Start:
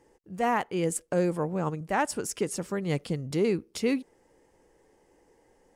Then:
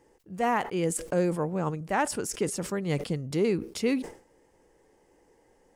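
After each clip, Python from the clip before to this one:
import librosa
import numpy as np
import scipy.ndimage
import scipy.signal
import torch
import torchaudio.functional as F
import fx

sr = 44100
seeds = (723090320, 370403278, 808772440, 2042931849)

y = fx.sustainer(x, sr, db_per_s=130.0)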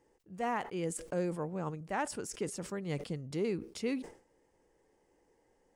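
y = fx.peak_eq(x, sr, hz=13000.0, db=-12.0, octaves=0.23)
y = y * 10.0 ** (-8.0 / 20.0)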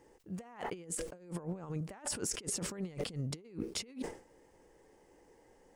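y = fx.over_compress(x, sr, threshold_db=-42.0, ratio=-0.5)
y = y * 10.0 ** (2.0 / 20.0)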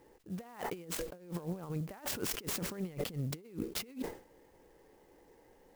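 y = fx.clock_jitter(x, sr, seeds[0], jitter_ms=0.033)
y = y * 10.0 ** (1.0 / 20.0)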